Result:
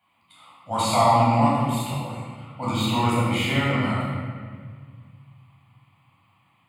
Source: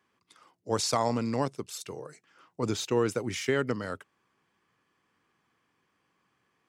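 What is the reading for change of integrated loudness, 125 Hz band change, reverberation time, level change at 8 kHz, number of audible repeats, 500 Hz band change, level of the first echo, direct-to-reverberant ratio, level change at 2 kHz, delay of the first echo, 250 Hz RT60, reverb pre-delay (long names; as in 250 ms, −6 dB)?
+7.5 dB, +13.0 dB, 1.7 s, +1.0 dB, no echo audible, +3.0 dB, no echo audible, −9.0 dB, +8.5 dB, no echo audible, 2.5 s, 12 ms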